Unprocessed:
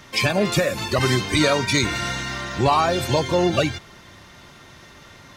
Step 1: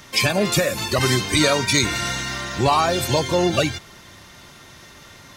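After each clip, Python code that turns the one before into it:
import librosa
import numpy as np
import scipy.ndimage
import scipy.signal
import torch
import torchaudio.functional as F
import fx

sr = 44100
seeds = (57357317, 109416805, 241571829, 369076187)

y = fx.high_shelf(x, sr, hz=5500.0, db=8.5)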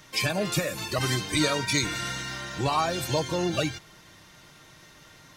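y = x + 0.36 * np.pad(x, (int(6.4 * sr / 1000.0), 0))[:len(x)]
y = F.gain(torch.from_numpy(y), -8.0).numpy()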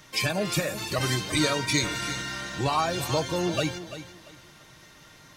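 y = fx.echo_feedback(x, sr, ms=341, feedback_pct=26, wet_db=-12.5)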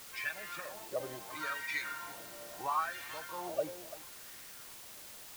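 y = fx.wah_lfo(x, sr, hz=0.74, low_hz=540.0, high_hz=1900.0, q=3.6)
y = fx.quant_dither(y, sr, seeds[0], bits=8, dither='triangular')
y = F.gain(torch.from_numpy(y), -2.5).numpy()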